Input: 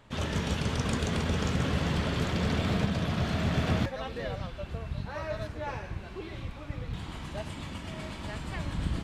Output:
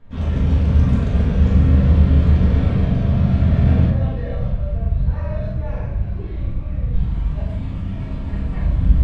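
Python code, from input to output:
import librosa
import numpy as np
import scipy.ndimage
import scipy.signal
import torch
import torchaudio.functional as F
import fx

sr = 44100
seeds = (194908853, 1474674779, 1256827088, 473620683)

y = fx.riaa(x, sr, side='playback')
y = fx.doubler(y, sr, ms=41.0, db=-4.5)
y = fx.room_shoebox(y, sr, seeds[0], volume_m3=200.0, walls='mixed', distance_m=1.7)
y = y * librosa.db_to_amplitude(-6.5)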